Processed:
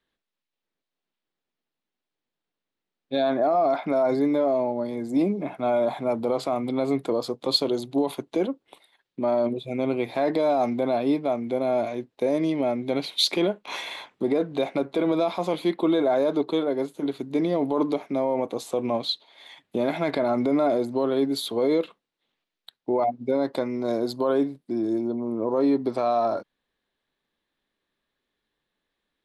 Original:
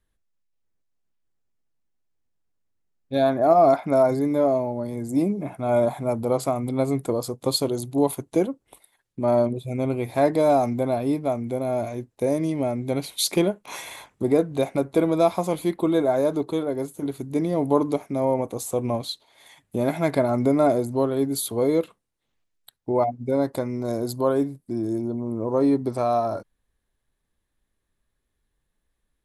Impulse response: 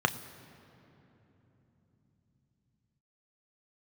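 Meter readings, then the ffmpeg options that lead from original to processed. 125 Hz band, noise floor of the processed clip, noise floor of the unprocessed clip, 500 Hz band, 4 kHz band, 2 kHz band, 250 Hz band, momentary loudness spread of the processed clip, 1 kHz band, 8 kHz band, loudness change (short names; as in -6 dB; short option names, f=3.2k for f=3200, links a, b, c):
-8.5 dB, under -85 dBFS, -77 dBFS, -1.5 dB, +4.0 dB, +0.5 dB, -1.0 dB, 6 LU, -2.0 dB, -9.5 dB, -1.5 dB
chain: -filter_complex "[0:a]acrossover=split=180 4600:gain=0.112 1 0.178[a][b][c];[a][b][c]amix=inputs=3:normalize=0,alimiter=limit=-16.5dB:level=0:latency=1:release=27,equalizer=f=3.7k:t=o:w=1:g=6.5,volume=2dB"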